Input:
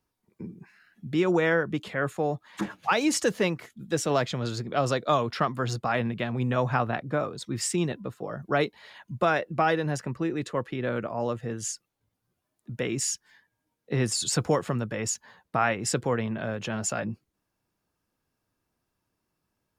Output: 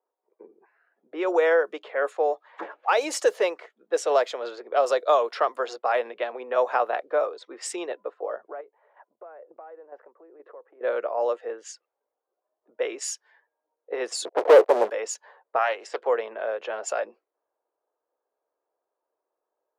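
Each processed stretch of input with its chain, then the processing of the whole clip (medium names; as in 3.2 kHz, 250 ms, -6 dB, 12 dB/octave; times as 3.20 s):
8.49–10.81 s: compression, threshold -36 dBFS + low-pass 2 kHz + square tremolo 2.1 Hz, depth 60%, duty 25%
14.25–14.90 s: Chebyshev low-pass 700 Hz, order 5 + waveshaping leveller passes 5 + tape noise reduction on one side only decoder only
15.58–16.07 s: de-esser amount 60% + bass shelf 470 Hz -10 dB + loudspeaker Doppler distortion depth 0.29 ms
whole clip: steep high-pass 470 Hz 36 dB/octave; level-controlled noise filter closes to 1 kHz, open at -25 dBFS; tilt shelf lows +8 dB, about 680 Hz; trim +5.5 dB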